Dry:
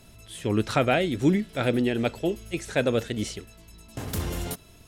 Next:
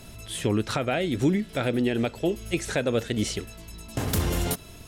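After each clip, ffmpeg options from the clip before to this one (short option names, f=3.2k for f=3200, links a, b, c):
-filter_complex "[0:a]asplit=2[a][b];[b]acompressor=threshold=-31dB:ratio=5,volume=2dB[c];[a][c]amix=inputs=2:normalize=0,alimiter=limit=-13.5dB:level=0:latency=1:release=371"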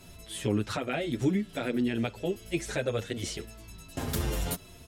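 -filter_complex "[0:a]asplit=2[a][b];[b]adelay=8,afreqshift=-1.3[c];[a][c]amix=inputs=2:normalize=1,volume=-2dB"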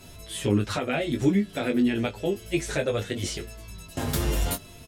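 -filter_complex "[0:a]asplit=2[a][b];[b]adelay=20,volume=-6.5dB[c];[a][c]amix=inputs=2:normalize=0,volume=3.5dB"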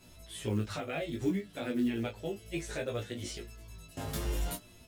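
-af "flanger=delay=16.5:depth=2.1:speed=0.63,acrusher=bits=8:mode=log:mix=0:aa=0.000001,volume=-6.5dB"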